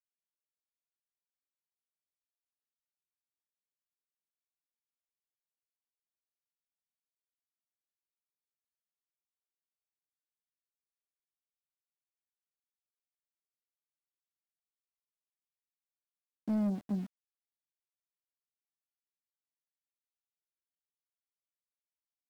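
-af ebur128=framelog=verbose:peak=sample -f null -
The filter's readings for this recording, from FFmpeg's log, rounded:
Integrated loudness:
  I:         -35.0 LUFS
  Threshold: -45.4 LUFS
Loudness range:
  LRA:         6.9 LU
  Threshold: -61.0 LUFS
  LRA low:   -47.1 LUFS
  LRA high:  -40.2 LUFS
Sample peak:
  Peak:      -28.0 dBFS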